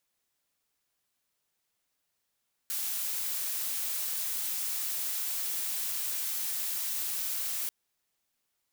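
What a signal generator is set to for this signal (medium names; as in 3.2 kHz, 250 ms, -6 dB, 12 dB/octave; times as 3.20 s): noise blue, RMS -33 dBFS 4.99 s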